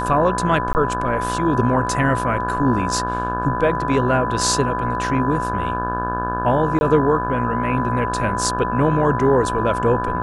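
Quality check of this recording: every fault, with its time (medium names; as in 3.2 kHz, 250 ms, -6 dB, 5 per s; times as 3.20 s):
buzz 60 Hz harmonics 29 -26 dBFS
whine 1 kHz -23 dBFS
0.73–0.75 s: dropout 19 ms
6.79–6.81 s: dropout 21 ms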